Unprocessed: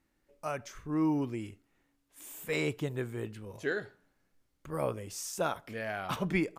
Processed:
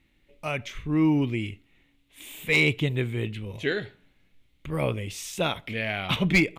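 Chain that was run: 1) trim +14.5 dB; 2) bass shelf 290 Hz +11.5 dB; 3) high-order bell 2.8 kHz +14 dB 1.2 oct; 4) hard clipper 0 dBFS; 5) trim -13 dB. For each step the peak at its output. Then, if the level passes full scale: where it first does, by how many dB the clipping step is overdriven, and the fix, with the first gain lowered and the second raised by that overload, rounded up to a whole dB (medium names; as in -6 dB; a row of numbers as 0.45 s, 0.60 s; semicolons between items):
-2.0 dBFS, +4.0 dBFS, +7.0 dBFS, 0.0 dBFS, -13.0 dBFS; step 2, 7.0 dB; step 1 +7.5 dB, step 5 -6 dB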